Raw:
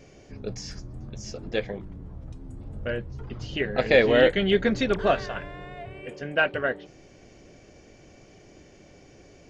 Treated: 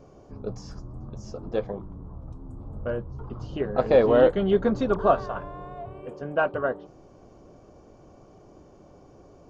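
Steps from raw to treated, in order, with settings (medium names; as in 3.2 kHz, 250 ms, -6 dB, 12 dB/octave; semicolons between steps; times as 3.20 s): resonant high shelf 1.5 kHz -9.5 dB, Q 3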